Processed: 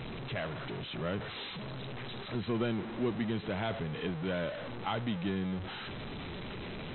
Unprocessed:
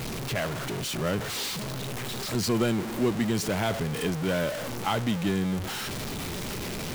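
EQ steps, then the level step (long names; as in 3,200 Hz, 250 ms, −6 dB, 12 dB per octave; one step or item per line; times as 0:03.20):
linear-phase brick-wall low-pass 4,100 Hz
−7.0 dB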